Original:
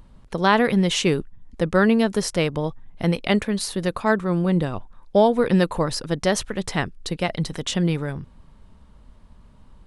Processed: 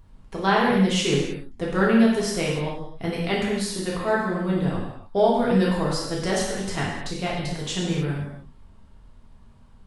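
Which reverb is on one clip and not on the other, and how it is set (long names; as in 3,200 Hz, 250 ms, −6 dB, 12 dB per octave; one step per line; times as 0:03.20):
reverb whose tail is shaped and stops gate 330 ms falling, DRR −5.5 dB
level −8 dB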